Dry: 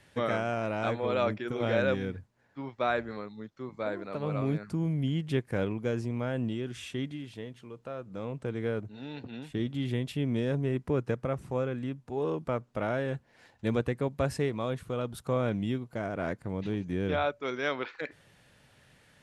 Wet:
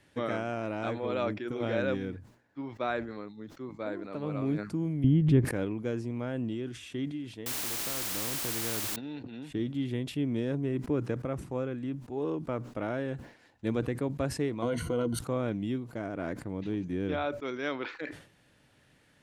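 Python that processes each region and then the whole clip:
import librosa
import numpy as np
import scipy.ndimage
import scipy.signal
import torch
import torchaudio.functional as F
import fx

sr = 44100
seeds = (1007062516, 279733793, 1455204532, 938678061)

y = fx.chain(x, sr, fx.riaa(side='playback'),
    fx.pre_swell(db_per_s=41.0), at=(5.04, 5.45))
y = fx.chain(y, sr, fx.low_shelf(hz=120.0, db=11.0),
    fx.quant_dither(seeds[0], bits=6, dither='triangular'),
    fx.spectral_comp(ratio=2.0), at=(7.46, 8.96))
y = fx.chain(y, sr, fx.ripple_eq(per_octave=1.9, db=15),
    fx.env_flatten(amount_pct=70), at=(14.62, 15.19))
y = fx.peak_eq(y, sr, hz=300.0, db=7.5, octaves=0.5)
y = fx.sustainer(y, sr, db_per_s=110.0)
y = y * 10.0 ** (-4.0 / 20.0)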